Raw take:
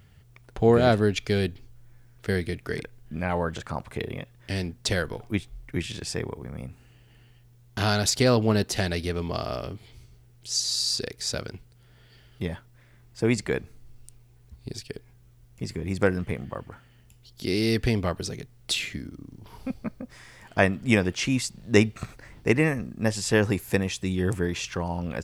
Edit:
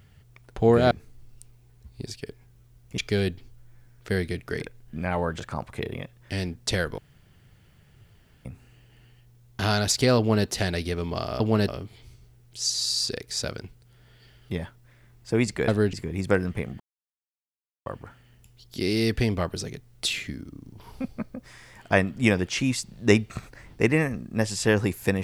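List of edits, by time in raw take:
0:00.91–0:01.16: swap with 0:13.58–0:15.65
0:05.16–0:06.63: fill with room tone
0:08.36–0:08.64: duplicate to 0:09.58
0:16.52: splice in silence 1.06 s

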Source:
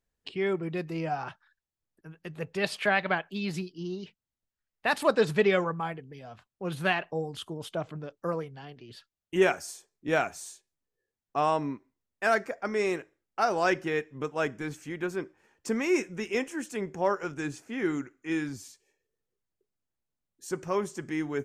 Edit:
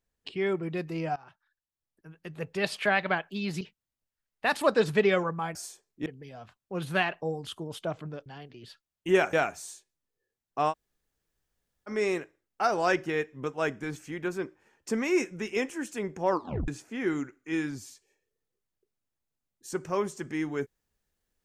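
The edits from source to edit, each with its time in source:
0:01.16–0:02.44: fade in, from −19 dB
0:03.61–0:04.02: remove
0:08.16–0:08.53: remove
0:09.60–0:10.11: move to 0:05.96
0:11.49–0:12.67: fill with room tone, crossfade 0.06 s
0:17.08: tape stop 0.38 s

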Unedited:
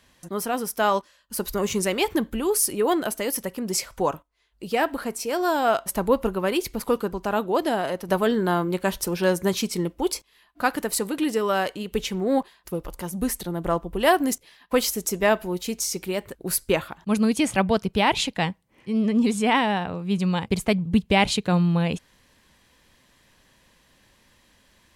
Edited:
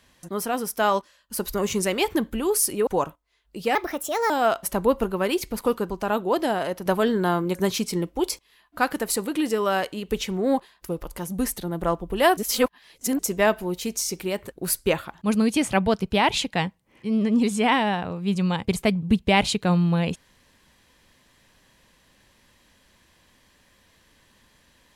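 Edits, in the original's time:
0:02.87–0:03.94: remove
0:04.82–0:05.53: play speed 129%
0:08.78–0:09.38: remove
0:14.20–0:15.02: reverse

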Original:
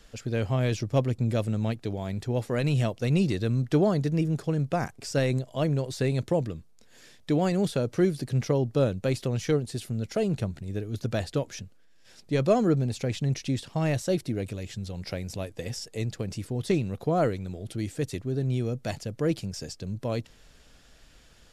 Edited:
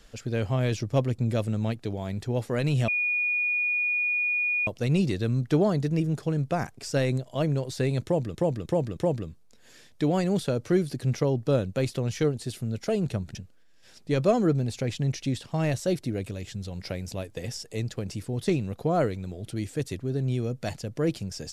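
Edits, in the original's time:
0:02.88: insert tone 2,450 Hz −23 dBFS 1.79 s
0:06.25–0:06.56: repeat, 4 plays
0:10.63–0:11.57: remove

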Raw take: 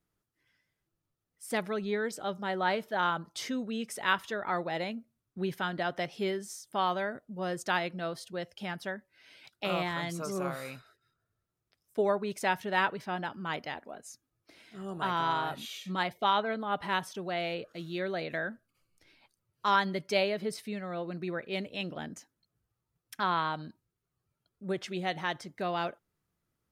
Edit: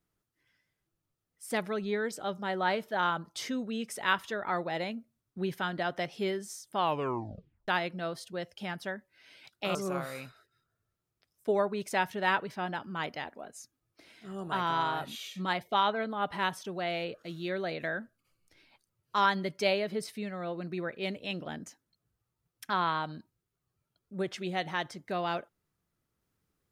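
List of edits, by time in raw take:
0:06.78: tape stop 0.90 s
0:09.75–0:10.25: remove

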